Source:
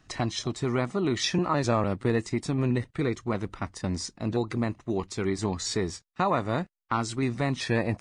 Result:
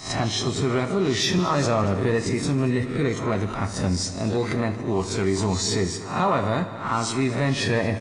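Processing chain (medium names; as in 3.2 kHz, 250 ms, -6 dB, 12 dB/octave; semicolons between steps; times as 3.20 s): reverse spectral sustain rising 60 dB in 0.40 s; saturation -13.5 dBFS, distortion -25 dB; on a send at -6.5 dB: reverberation, pre-delay 3 ms; on the sum: resampled via 32 kHz; multi-head delay 77 ms, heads all three, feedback 41%, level -19 dB; in parallel at +1 dB: peak limiter -22 dBFS, peak gain reduction 8.5 dB; on the sum: trim -1.5 dB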